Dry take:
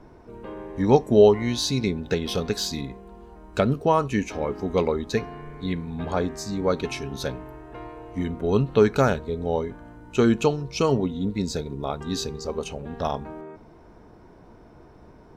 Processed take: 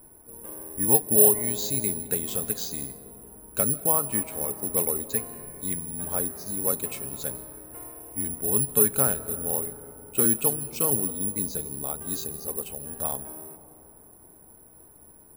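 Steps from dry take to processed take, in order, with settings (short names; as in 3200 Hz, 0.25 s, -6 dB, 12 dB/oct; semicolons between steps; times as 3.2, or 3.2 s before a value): careless resampling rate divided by 4×, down filtered, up zero stuff; digital reverb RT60 4.1 s, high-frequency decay 0.25×, pre-delay 0.115 s, DRR 15 dB; gain -9 dB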